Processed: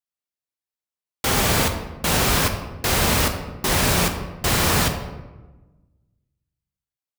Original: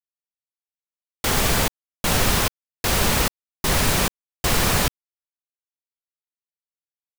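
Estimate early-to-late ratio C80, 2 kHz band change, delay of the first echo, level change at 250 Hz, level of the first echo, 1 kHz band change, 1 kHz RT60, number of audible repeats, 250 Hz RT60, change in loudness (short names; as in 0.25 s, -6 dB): 10.0 dB, +1.0 dB, none, +2.0 dB, none, +1.5 dB, 1.1 s, none, 1.5 s, +1.0 dB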